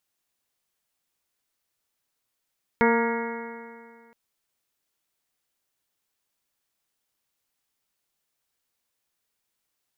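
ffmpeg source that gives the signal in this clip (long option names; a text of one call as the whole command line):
ffmpeg -f lavfi -i "aevalsrc='0.0891*pow(10,-3*t/2.07)*sin(2*PI*230.15*t)+0.106*pow(10,-3*t/2.07)*sin(2*PI*461.19*t)+0.0282*pow(10,-3*t/2.07)*sin(2*PI*694.02*t)+0.0794*pow(10,-3*t/2.07)*sin(2*PI*929.52*t)+0.0224*pow(10,-3*t/2.07)*sin(2*PI*1168.54*t)+0.0422*pow(10,-3*t/2.07)*sin(2*PI*1411.92*t)+0.0355*pow(10,-3*t/2.07)*sin(2*PI*1660.49*t)+0.0376*pow(10,-3*t/2.07)*sin(2*PI*1915.01*t)+0.0447*pow(10,-3*t/2.07)*sin(2*PI*2176.26*t)':duration=1.32:sample_rate=44100" out.wav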